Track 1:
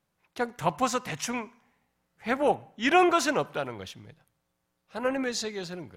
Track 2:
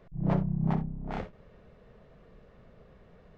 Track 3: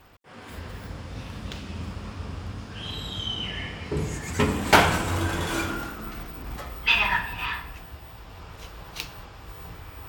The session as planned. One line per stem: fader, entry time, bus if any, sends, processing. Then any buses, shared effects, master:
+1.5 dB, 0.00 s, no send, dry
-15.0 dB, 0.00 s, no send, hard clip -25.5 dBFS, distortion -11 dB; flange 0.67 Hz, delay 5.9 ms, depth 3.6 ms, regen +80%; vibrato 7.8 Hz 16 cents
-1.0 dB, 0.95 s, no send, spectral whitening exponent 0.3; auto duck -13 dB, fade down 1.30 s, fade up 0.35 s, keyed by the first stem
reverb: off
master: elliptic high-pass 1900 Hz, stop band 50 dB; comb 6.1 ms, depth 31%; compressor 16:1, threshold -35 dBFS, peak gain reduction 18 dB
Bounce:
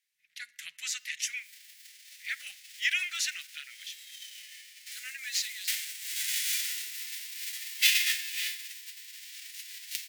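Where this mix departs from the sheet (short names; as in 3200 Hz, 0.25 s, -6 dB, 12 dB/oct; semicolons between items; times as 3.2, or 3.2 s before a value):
stem 2 -15.0 dB -> -21.5 dB; master: missing compressor 16:1, threshold -35 dBFS, peak gain reduction 18 dB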